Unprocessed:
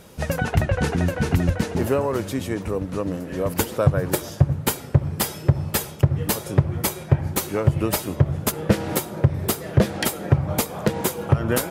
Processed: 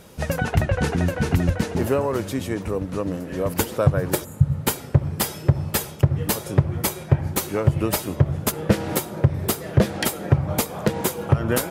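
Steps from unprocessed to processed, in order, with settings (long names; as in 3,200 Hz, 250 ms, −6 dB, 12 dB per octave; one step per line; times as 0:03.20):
healed spectral selection 0:04.27–0:04.56, 230–6,700 Hz after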